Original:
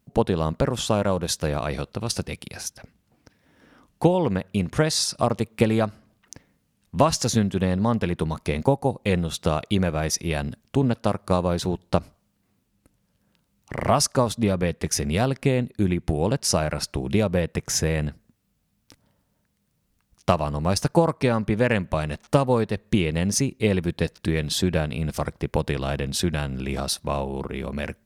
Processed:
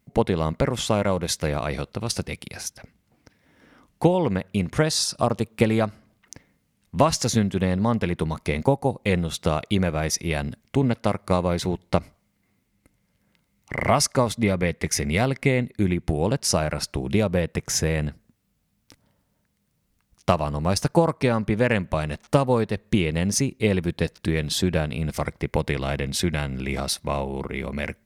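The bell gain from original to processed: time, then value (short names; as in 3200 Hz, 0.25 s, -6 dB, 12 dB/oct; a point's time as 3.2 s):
bell 2100 Hz 0.22 oct
+11 dB
from 1.51 s +5 dB
from 4.83 s -3.5 dB
from 5.61 s +5.5 dB
from 10.61 s +12 dB
from 15.92 s +2.5 dB
from 25.12 s +10 dB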